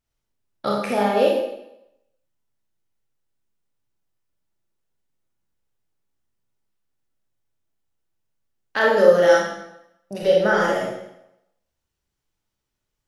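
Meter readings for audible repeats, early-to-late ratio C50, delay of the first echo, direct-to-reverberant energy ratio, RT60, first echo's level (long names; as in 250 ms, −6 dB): no echo audible, 1.0 dB, no echo audible, −3.5 dB, 0.85 s, no echo audible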